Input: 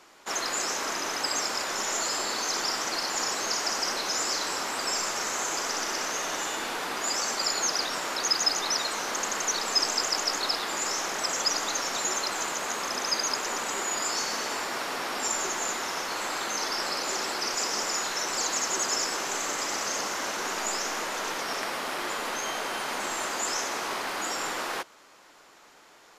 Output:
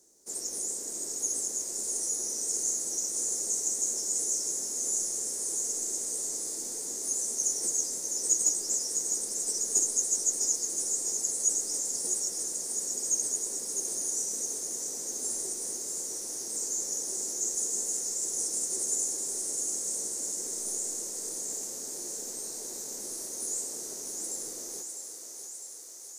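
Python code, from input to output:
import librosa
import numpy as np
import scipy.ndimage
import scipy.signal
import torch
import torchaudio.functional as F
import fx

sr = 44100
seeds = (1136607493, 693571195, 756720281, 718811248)

y = fx.formant_shift(x, sr, semitones=5)
y = fx.curve_eq(y, sr, hz=(280.0, 450.0, 1100.0, 3000.0, 6400.0, 9100.0), db=(0, 3, -23, -24, 10, 3))
y = fx.echo_thinned(y, sr, ms=654, feedback_pct=74, hz=490.0, wet_db=-6)
y = F.gain(torch.from_numpy(y), -7.0).numpy()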